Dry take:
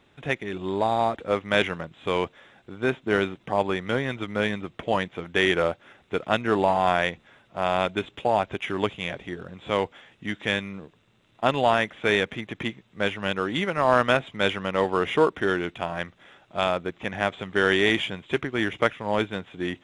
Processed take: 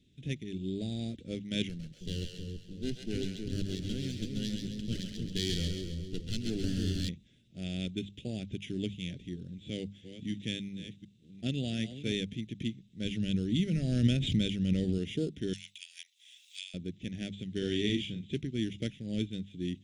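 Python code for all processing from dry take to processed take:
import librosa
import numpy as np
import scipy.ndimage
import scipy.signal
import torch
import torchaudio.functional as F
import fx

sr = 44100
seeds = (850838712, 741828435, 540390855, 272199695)

y = fx.chain(x, sr, fx.lower_of_two(delay_ms=0.65),
    fx.echo_split(split_hz=510.0, low_ms=317, high_ms=134, feedback_pct=52, wet_db=-4.0), at=(1.69, 7.09))
y = fx.chain(y, sr, fx.reverse_delay(ms=367, wet_db=-10.5),
    fx.highpass(hz=58.0, slope=12), at=(9.58, 12.12))
y = fx.chain(y, sr, fx.low_shelf(hz=110.0, db=10.5),
    fx.pre_swell(db_per_s=37.0), at=(13.05, 14.98))
y = fx.chain(y, sr, fx.cheby1_highpass(hz=2200.0, order=3),
    fx.high_shelf(hz=6300.0, db=11.5),
    fx.band_squash(depth_pct=100), at=(15.53, 16.74))
y = fx.chain(y, sr, fx.high_shelf(hz=7900.0, db=-10.5),
    fx.doubler(ms=39.0, db=-6), at=(17.58, 18.35))
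y = scipy.signal.sosfilt(scipy.signal.cheby1(2, 1.0, [210.0, 4800.0], 'bandstop', fs=sr, output='sos'), y)
y = fx.high_shelf(y, sr, hz=9000.0, db=-10.0)
y = fx.hum_notches(y, sr, base_hz=50, count=4)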